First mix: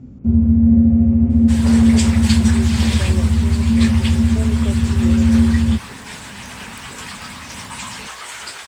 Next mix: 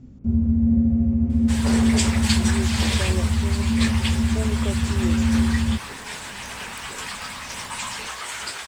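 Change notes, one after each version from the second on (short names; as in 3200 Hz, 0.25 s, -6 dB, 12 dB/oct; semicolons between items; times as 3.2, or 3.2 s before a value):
first sound -7.0 dB; master: remove HPF 56 Hz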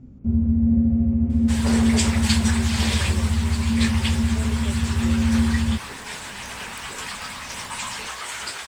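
speech -8.0 dB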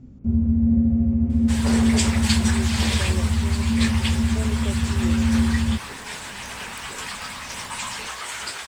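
speech +4.5 dB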